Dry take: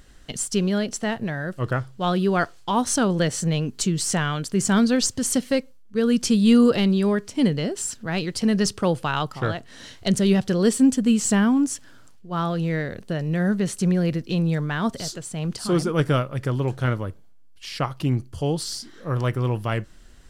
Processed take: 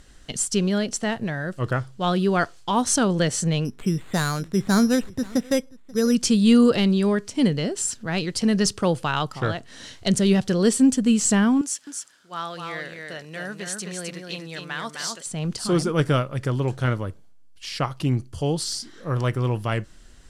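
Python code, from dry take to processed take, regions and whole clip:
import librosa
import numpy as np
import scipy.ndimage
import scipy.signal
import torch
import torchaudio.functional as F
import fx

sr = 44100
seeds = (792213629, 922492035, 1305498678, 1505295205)

y = fx.chain(x, sr, fx.echo_single(ms=534, db=-23.0),
    fx.resample_bad(factor=8, down='filtered', up='hold'), at=(3.65, 6.15))
y = fx.chain(y, sr, fx.highpass(hz=1300.0, slope=6),
    fx.echo_single(ms=259, db=-4.5), at=(11.61, 15.26))
y = scipy.signal.sosfilt(scipy.signal.butter(2, 10000.0, 'lowpass', fs=sr, output='sos'), y)
y = fx.high_shelf(y, sr, hz=5900.0, db=6.0)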